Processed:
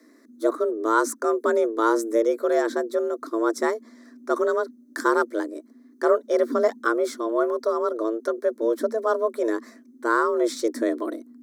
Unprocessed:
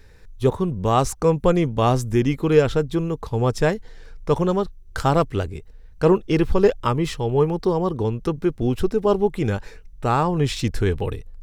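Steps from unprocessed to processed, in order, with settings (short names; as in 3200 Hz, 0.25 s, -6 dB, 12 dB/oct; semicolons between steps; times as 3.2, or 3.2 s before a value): frequency shift +220 Hz; fixed phaser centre 750 Hz, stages 6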